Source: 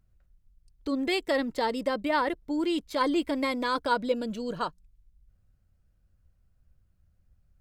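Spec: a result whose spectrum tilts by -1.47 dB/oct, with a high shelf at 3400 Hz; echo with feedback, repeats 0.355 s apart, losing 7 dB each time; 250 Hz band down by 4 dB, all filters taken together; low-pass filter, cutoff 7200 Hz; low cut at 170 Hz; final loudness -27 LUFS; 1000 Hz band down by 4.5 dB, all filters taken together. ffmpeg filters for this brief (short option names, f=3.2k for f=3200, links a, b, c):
-af "highpass=170,lowpass=7.2k,equalizer=f=250:t=o:g=-4,equalizer=f=1k:t=o:g=-4.5,highshelf=f=3.4k:g=-4.5,aecho=1:1:355|710|1065|1420|1775:0.447|0.201|0.0905|0.0407|0.0183,volume=4.5dB"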